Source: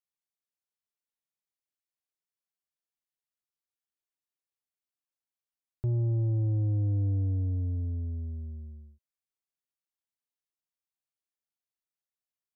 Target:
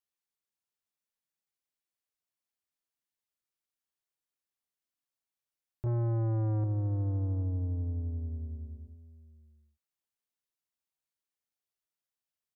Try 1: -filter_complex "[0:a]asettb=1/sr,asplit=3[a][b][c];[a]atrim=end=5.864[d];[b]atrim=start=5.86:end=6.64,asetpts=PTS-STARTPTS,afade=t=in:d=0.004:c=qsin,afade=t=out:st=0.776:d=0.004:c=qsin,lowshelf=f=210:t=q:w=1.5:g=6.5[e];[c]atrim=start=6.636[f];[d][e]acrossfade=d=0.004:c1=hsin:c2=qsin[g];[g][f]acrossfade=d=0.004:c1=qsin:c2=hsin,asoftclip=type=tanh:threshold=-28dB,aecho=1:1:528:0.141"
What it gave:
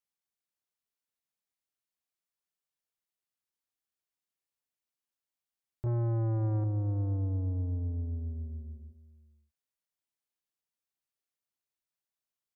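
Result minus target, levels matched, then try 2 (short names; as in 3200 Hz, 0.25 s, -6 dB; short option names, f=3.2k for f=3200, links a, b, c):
echo 0.262 s early
-filter_complex "[0:a]asettb=1/sr,asplit=3[a][b][c];[a]atrim=end=5.864[d];[b]atrim=start=5.86:end=6.64,asetpts=PTS-STARTPTS,afade=t=in:d=0.004:c=qsin,afade=t=out:st=0.776:d=0.004:c=qsin,lowshelf=f=210:t=q:w=1.5:g=6.5[e];[c]atrim=start=6.636[f];[d][e]acrossfade=d=0.004:c1=hsin:c2=qsin[g];[g][f]acrossfade=d=0.004:c1=qsin:c2=hsin,asoftclip=type=tanh:threshold=-28dB,aecho=1:1:790:0.141"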